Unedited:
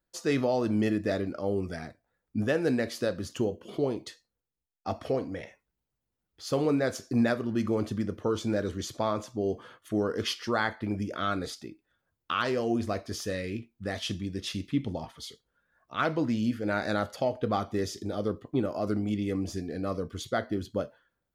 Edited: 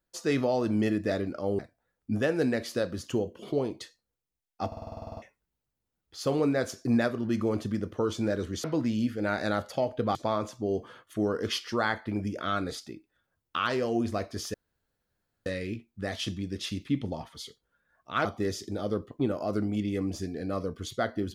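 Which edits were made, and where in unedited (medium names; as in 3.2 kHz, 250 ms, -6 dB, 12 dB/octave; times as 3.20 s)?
1.59–1.85 s: delete
4.93 s: stutter in place 0.05 s, 11 plays
13.29 s: insert room tone 0.92 s
16.08–17.59 s: move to 8.90 s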